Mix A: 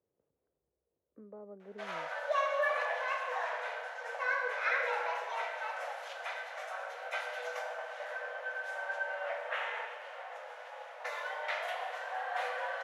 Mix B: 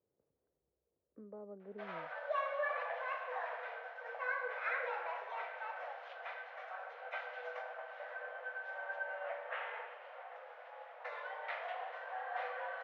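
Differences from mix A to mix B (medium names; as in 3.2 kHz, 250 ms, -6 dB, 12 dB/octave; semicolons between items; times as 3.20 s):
background: send -11.0 dB; master: add distance through air 330 m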